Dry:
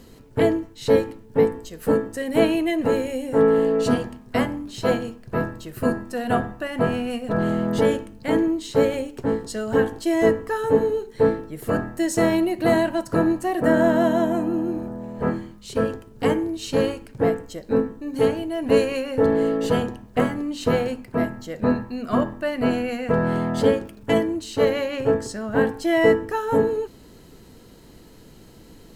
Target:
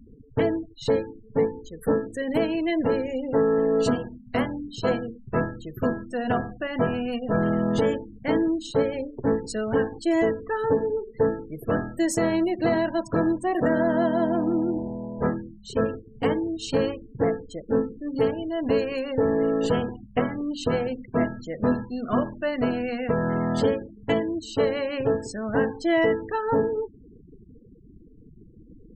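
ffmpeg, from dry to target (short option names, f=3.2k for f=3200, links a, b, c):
-af "alimiter=limit=-12.5dB:level=0:latency=1:release=416,afftfilt=real='re*gte(hypot(re,im),0.0178)':imag='im*gte(hypot(re,im),0.0178)':win_size=1024:overlap=0.75"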